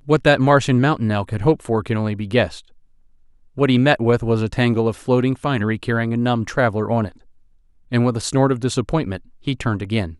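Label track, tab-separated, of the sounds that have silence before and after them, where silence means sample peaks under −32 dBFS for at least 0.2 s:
3.570000	7.090000	sound
7.920000	9.170000	sound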